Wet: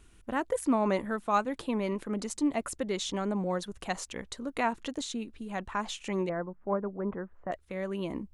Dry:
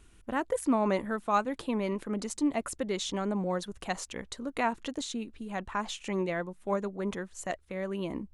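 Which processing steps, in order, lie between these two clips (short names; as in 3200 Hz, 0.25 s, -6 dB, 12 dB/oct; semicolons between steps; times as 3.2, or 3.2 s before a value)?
6.29–7.52 LPF 1500 Hz 24 dB/oct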